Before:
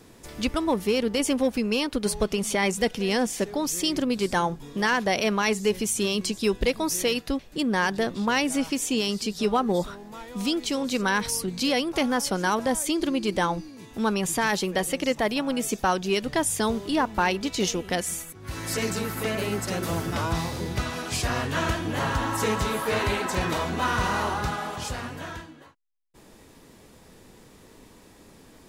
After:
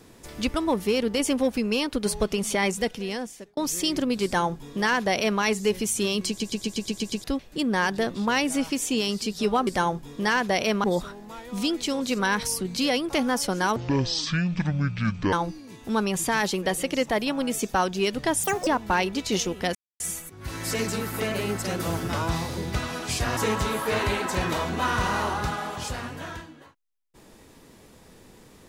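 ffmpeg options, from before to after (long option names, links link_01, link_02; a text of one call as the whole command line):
ffmpeg -i in.wav -filter_complex "[0:a]asplit=18[link_01][link_02][link_03][link_04][link_05][link_06][link_07][link_08][link_09][link_10][link_11][link_12][link_13][link_14][link_15][link_16][link_17][link_18];[link_01]atrim=end=3.57,asetpts=PTS-STARTPTS,afade=type=out:start_time=2.63:duration=0.94[link_19];[link_02]atrim=start=3.57:end=6.402,asetpts=PTS-STARTPTS,afade=type=in:duration=0.004:curve=hsin[link_20];[link_03]atrim=start=6.278:end=6.402[link_21];[link_04]atrim=start=6.278:end=6.402[link_22];[link_05]atrim=start=6.278:end=6.402[link_23];[link_06]atrim=start=6.278:end=6.402[link_24];[link_07]atrim=start=6.278:end=6.402[link_25];[link_08]atrim=start=6.278:end=6.402[link_26];[link_09]atrim=start=6.278:end=6.402[link_27];[link_10]atrim=start=7.238:end=9.672[link_28];[link_11]atrim=start=4.238:end=5.412[link_29];[link_12]atrim=start=9.668:end=12.594[link_30];[link_13]atrim=start=12.59:end=13.42,asetpts=PTS-STARTPTS,asetrate=23373,aresample=44100,atrim=end_sample=69062,asetpts=PTS-STARTPTS[link_31];[link_14]atrim=start=13.416:end=16.534[link_32];[link_15]atrim=start=16.53:end=16.95,asetpts=PTS-STARTPTS,asetrate=79380,aresample=44100[link_33];[link_16]atrim=start=16.946:end=18.03,asetpts=PTS-STARTPTS,afade=type=out:start_time=1.08:duration=0.004:curve=hsin,apad=pad_dur=0.25[link_34];[link_17]atrim=start=18.03:end=21.402,asetpts=PTS-STARTPTS,afade=type=in:duration=0.004:curve=hsin[link_35];[link_18]atrim=start=22.368[link_36];[link_19][link_20]concat=n=2:v=0:a=1[link_37];[link_37][link_21]acrossfade=duration=0.004:curve1=hsin:curve2=hsin[link_38];[link_38][link_22]acrossfade=duration=0.004:curve1=hsin:curve2=hsin[link_39];[link_39][link_23]acrossfade=duration=0.004:curve1=hsin:curve2=hsin[link_40];[link_40][link_24]acrossfade=duration=0.004:curve1=hsin:curve2=hsin[link_41];[link_41][link_25]acrossfade=duration=0.004:curve1=hsin:curve2=hsin[link_42];[link_42][link_26]acrossfade=duration=0.004:curve1=hsin:curve2=hsin[link_43];[link_43][link_27]acrossfade=duration=0.004:curve1=hsin:curve2=hsin[link_44];[link_44][link_28]acrossfade=duration=0.004:curve1=hsin:curve2=hsin[link_45];[link_45][link_29]acrossfade=duration=0.004:curve1=hsin:curve2=hsin[link_46];[link_46][link_30]acrossfade=duration=0.004:curve1=hsin:curve2=hsin[link_47];[link_47][link_31]acrossfade=duration=0.004:curve1=hsin:curve2=hsin[link_48];[link_48][link_32]acrossfade=duration=0.004:curve1=hsin:curve2=hsin[link_49];[link_49][link_33]acrossfade=duration=0.004:curve1=hsin:curve2=hsin[link_50];[link_34][link_35]concat=n=2:v=0:a=1[link_51];[link_50][link_51]acrossfade=duration=0.004:curve1=hsin:curve2=hsin[link_52];[link_52][link_36]acrossfade=duration=0.004:curve1=hsin:curve2=hsin" out.wav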